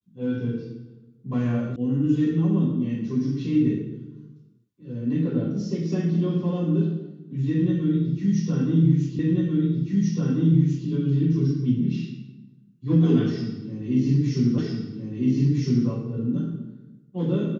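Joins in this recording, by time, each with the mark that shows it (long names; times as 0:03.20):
0:01.76: cut off before it has died away
0:09.19: the same again, the last 1.69 s
0:14.58: the same again, the last 1.31 s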